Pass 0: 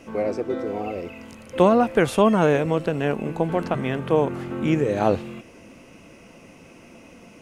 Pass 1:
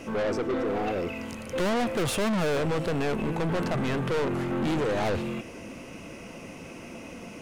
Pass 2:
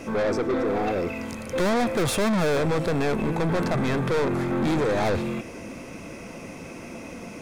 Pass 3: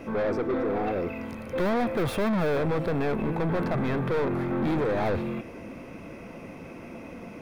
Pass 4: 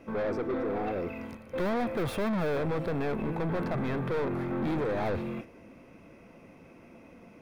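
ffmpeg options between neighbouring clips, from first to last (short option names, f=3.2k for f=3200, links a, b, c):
-af "aeval=exprs='(tanh(31.6*val(0)+0.15)-tanh(0.15))/31.6':c=same,volume=5.5dB"
-af "bandreject=f=2.9k:w=7.8,volume=3.5dB"
-af "equalizer=f=7.4k:t=o:w=1.5:g=-14.5,volume=-2.5dB"
-af "agate=range=-7dB:threshold=-36dB:ratio=16:detection=peak,volume=-4dB"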